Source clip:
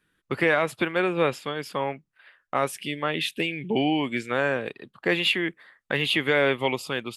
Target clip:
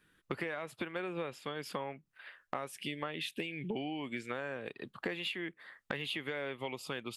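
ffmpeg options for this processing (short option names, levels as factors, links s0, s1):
-af "acompressor=threshold=0.0158:ratio=16,volume=1.19"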